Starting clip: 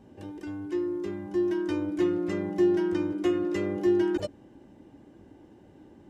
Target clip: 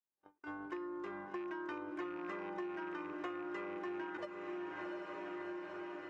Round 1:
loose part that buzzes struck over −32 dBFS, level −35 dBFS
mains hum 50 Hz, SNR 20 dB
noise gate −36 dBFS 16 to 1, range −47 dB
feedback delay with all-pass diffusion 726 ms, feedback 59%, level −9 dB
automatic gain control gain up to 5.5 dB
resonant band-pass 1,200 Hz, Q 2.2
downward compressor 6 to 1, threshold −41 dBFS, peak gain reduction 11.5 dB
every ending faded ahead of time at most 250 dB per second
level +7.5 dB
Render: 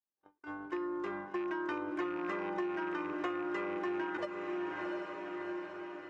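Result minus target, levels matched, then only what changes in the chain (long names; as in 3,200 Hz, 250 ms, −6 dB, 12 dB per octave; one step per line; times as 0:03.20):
downward compressor: peak gain reduction −6 dB
change: downward compressor 6 to 1, threshold −48.5 dBFS, peak gain reduction 18 dB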